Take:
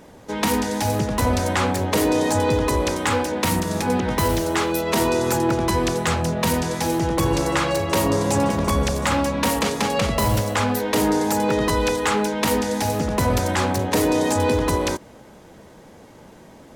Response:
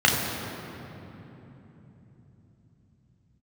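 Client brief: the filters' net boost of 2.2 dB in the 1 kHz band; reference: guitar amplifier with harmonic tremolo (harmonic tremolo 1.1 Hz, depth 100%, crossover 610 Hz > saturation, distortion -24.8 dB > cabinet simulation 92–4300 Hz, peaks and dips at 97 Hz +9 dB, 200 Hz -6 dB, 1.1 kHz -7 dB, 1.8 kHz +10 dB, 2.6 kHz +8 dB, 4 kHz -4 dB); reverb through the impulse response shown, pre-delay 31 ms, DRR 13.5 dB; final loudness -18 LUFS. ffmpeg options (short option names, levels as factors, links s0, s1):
-filter_complex "[0:a]equalizer=f=1000:t=o:g=5,asplit=2[s0][s1];[1:a]atrim=start_sample=2205,adelay=31[s2];[s1][s2]afir=irnorm=-1:irlink=0,volume=0.0224[s3];[s0][s3]amix=inputs=2:normalize=0,acrossover=split=610[s4][s5];[s4]aeval=exprs='val(0)*(1-1/2+1/2*cos(2*PI*1.1*n/s))':c=same[s6];[s5]aeval=exprs='val(0)*(1-1/2-1/2*cos(2*PI*1.1*n/s))':c=same[s7];[s6][s7]amix=inputs=2:normalize=0,asoftclip=threshold=0.251,highpass=92,equalizer=f=97:t=q:w=4:g=9,equalizer=f=200:t=q:w=4:g=-6,equalizer=f=1100:t=q:w=4:g=-7,equalizer=f=1800:t=q:w=4:g=10,equalizer=f=2600:t=q:w=4:g=8,equalizer=f=4000:t=q:w=4:g=-4,lowpass=f=4300:w=0.5412,lowpass=f=4300:w=1.3066,volume=2"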